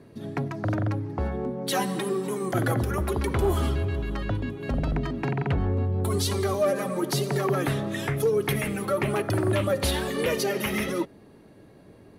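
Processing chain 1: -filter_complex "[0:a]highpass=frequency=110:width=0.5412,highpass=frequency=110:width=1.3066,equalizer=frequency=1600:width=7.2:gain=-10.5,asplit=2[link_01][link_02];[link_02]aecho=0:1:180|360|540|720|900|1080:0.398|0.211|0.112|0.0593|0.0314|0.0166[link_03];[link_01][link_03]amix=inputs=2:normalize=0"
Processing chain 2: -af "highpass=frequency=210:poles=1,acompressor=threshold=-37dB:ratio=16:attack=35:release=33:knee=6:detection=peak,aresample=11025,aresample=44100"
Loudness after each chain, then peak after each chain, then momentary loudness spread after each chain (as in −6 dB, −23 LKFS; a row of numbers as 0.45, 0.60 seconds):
−27.0, −36.0 LKFS; −12.0, −20.5 dBFS; 8, 3 LU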